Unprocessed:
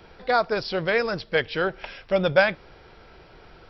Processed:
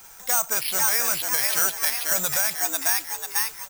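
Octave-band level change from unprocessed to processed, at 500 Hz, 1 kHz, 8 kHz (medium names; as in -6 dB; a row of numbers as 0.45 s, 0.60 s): -13.0 dB, -3.5 dB, no reading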